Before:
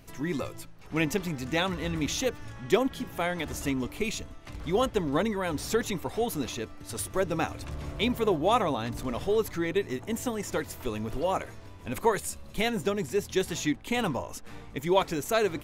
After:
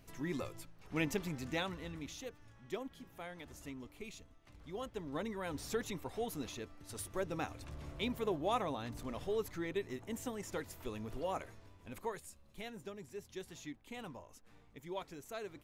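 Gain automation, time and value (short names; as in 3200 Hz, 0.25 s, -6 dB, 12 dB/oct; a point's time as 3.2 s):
1.44 s -8 dB
2.16 s -18 dB
4.78 s -18 dB
5.46 s -10.5 dB
11.52 s -10.5 dB
12.35 s -19 dB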